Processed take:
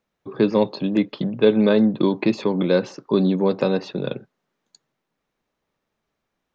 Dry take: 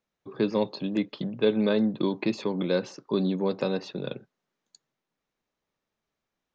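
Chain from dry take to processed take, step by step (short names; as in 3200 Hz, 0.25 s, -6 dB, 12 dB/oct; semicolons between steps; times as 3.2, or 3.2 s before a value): high shelf 3700 Hz -6.5 dB; gain +7.5 dB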